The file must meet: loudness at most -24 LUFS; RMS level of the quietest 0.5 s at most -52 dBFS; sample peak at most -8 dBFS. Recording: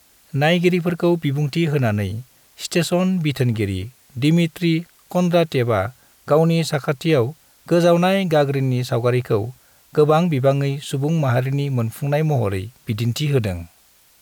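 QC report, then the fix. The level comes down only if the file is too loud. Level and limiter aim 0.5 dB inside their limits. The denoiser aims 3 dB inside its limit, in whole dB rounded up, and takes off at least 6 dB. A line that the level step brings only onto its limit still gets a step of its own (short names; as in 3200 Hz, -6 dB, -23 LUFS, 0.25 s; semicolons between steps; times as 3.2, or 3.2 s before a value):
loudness -19.5 LUFS: fail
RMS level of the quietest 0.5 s -54 dBFS: OK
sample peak -5.5 dBFS: fail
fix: gain -5 dB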